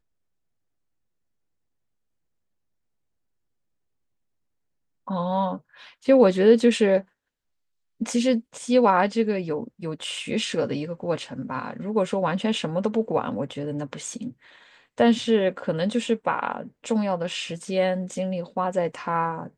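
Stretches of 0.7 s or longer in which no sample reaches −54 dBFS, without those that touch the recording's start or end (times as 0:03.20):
0:07.08–0:08.00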